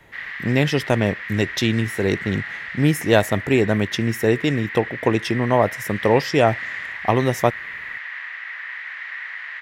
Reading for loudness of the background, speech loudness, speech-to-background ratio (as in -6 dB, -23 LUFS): -30.5 LUFS, -21.0 LUFS, 9.5 dB